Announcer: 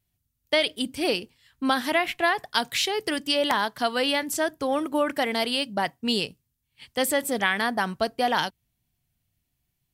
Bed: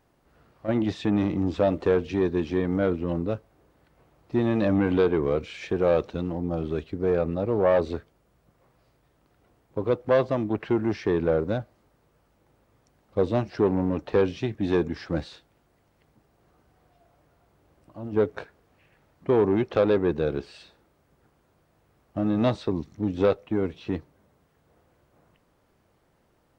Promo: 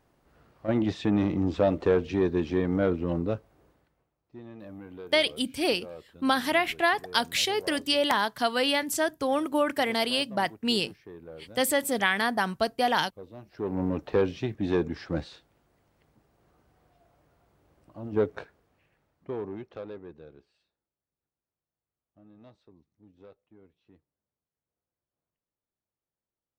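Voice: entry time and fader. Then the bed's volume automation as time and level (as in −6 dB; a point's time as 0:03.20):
4.60 s, −1.0 dB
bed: 0:03.69 −1 dB
0:04.17 −21.5 dB
0:13.36 −21.5 dB
0:13.83 −2.5 dB
0:18.35 −2.5 dB
0:20.93 −30.5 dB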